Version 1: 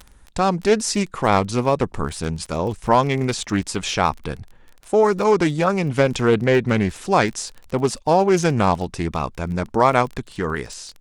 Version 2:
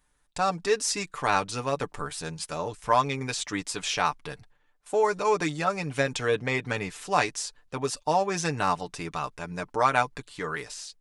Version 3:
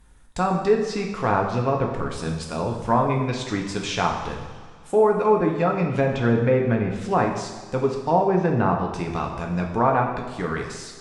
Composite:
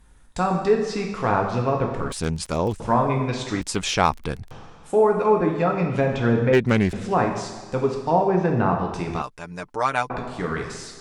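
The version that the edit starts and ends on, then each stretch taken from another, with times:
3
2.12–2.8 from 1
3.61–4.51 from 1
6.53–6.93 from 1
9.22–10.1 from 2

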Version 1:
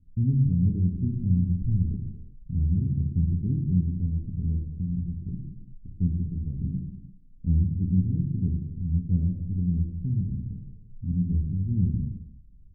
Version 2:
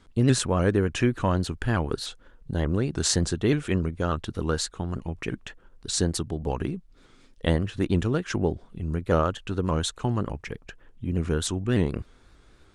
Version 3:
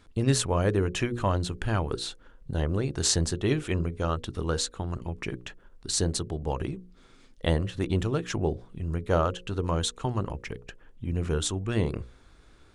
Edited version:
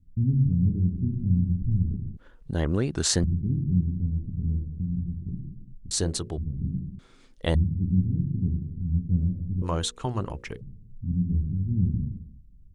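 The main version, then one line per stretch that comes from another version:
1
2.17–3.24 from 2
5.91–6.38 from 3
6.99–7.55 from 3
9.62–10.61 from 3

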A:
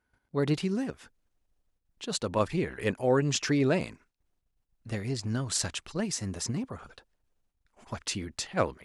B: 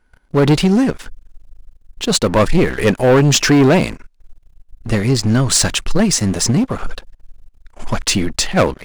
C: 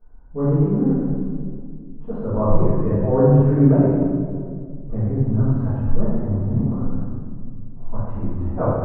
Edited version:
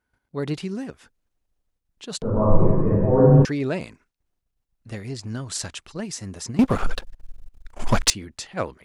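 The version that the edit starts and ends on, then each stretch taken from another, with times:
A
2.22–3.45 from C
6.59–8.1 from B

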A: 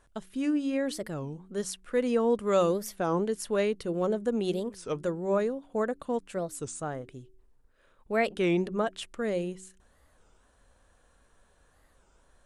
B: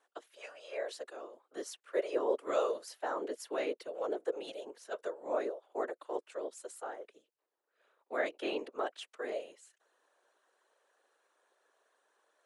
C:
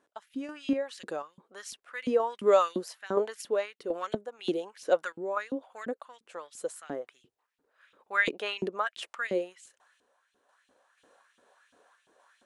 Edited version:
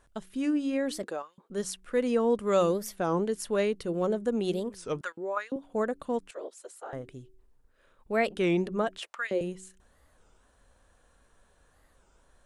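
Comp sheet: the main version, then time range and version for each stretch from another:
A
1.03–1.5 from C
5.01–5.56 from C
6.31–6.93 from B
8.98–9.41 from C

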